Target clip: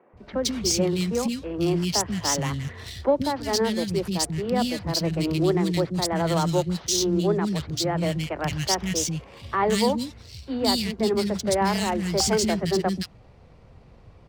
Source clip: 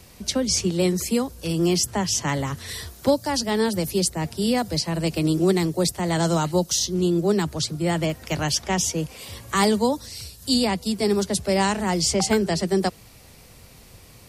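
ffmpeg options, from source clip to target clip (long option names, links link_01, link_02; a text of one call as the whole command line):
ffmpeg -i in.wav -filter_complex "[0:a]adynamicsmooth=sensitivity=7:basefreq=1500,acrossover=split=270|2000[link_01][link_02][link_03];[link_01]adelay=130[link_04];[link_03]adelay=170[link_05];[link_04][link_02][link_05]amix=inputs=3:normalize=0" out.wav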